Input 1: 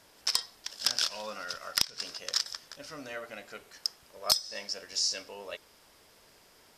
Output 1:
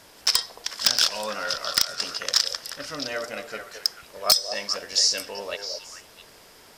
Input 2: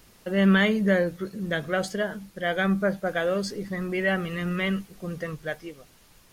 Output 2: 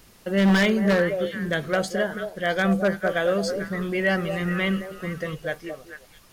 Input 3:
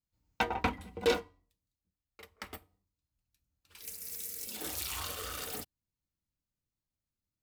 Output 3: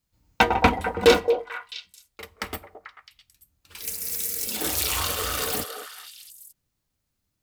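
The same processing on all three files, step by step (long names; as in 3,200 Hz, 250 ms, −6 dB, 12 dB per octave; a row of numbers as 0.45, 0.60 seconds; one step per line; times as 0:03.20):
echo through a band-pass that steps 220 ms, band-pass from 560 Hz, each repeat 1.4 octaves, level −5 dB
wave folding −15 dBFS
loudness normalisation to −24 LKFS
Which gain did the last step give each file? +8.5, +2.0, +12.0 decibels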